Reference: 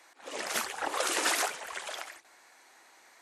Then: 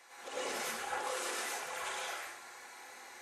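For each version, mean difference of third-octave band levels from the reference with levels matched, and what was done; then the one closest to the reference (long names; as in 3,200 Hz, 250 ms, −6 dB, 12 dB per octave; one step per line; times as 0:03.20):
8.0 dB: downward compressor 12 to 1, threshold −42 dBFS, peak gain reduction 18.5 dB
notch comb filter 310 Hz
dense smooth reverb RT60 0.74 s, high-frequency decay 0.8×, pre-delay 85 ms, DRR −8 dB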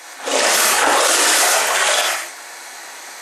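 5.0 dB: bass and treble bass −7 dB, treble +4 dB
reverb whose tail is shaped and stops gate 150 ms flat, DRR −3 dB
boost into a limiter +22.5 dB
level −4 dB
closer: second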